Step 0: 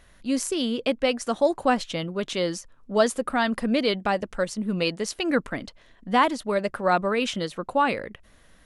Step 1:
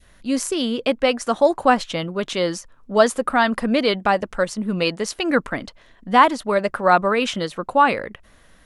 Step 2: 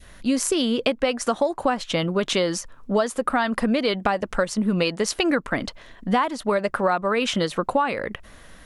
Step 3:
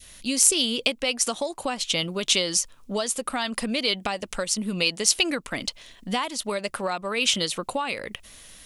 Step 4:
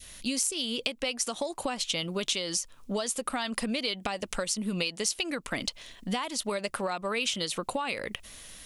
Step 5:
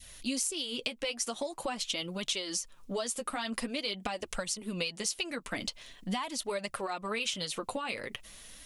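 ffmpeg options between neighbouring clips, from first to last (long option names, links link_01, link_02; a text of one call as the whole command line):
ffmpeg -i in.wav -af "adynamicequalizer=threshold=0.0224:dfrequency=1100:dqfactor=0.8:tfrequency=1100:tqfactor=0.8:attack=5:release=100:ratio=0.375:range=2.5:mode=boostabove:tftype=bell,volume=3dB" out.wav
ffmpeg -i in.wav -af "acompressor=threshold=-24dB:ratio=10,volume=6dB" out.wav
ffmpeg -i in.wav -af "aexciter=amount=5.2:drive=2.8:freq=2300,volume=-7dB" out.wav
ffmpeg -i in.wav -af "acompressor=threshold=-27dB:ratio=6" out.wav
ffmpeg -i in.wav -af "flanger=delay=0.9:depth=9.3:regen=-24:speed=0.45:shape=triangular" out.wav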